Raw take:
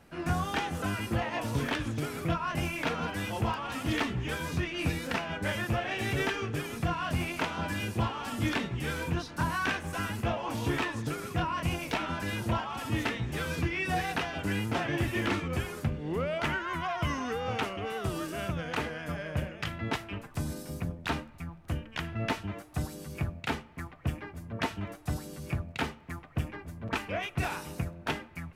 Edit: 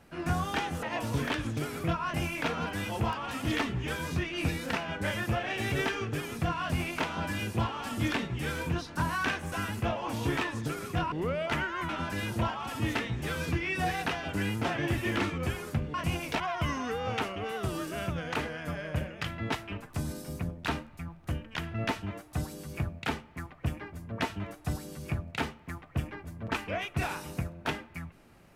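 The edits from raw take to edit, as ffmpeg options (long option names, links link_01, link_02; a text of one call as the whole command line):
ffmpeg -i in.wav -filter_complex "[0:a]asplit=6[link_01][link_02][link_03][link_04][link_05][link_06];[link_01]atrim=end=0.832[link_07];[link_02]atrim=start=1.238:end=11.532[link_08];[link_03]atrim=start=16.038:end=16.812[link_09];[link_04]atrim=start=11.988:end=16.042[link_10];[link_05]atrim=start=11.528:end=11.992[link_11];[link_06]atrim=start=16.808[link_12];[link_07][link_08]acrossfade=duration=0.004:curve1=hsin:curve2=hsin[link_13];[link_13][link_09]acrossfade=duration=0.004:curve1=hsin:curve2=hsin[link_14];[link_14][link_10]acrossfade=duration=0.004:curve1=hsin:curve2=hsin[link_15];[link_15][link_11]acrossfade=duration=0.004:curve1=hsin:curve2=hsin[link_16];[link_16][link_12]acrossfade=duration=0.004:curve1=hsin:curve2=hsin" out.wav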